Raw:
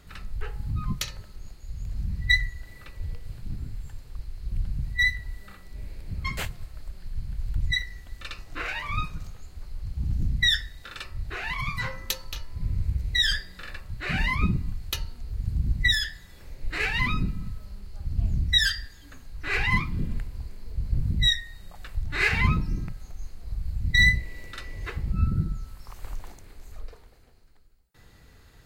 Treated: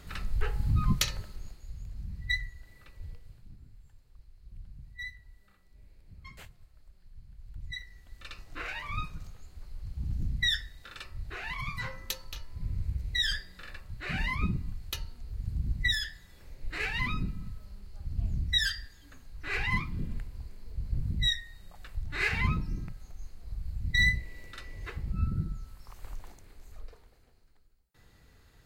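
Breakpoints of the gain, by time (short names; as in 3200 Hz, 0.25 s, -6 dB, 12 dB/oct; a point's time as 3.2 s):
1.17 s +3 dB
1.94 s -9.5 dB
3.08 s -9.5 dB
3.58 s -18 dB
7.41 s -18 dB
8.38 s -6 dB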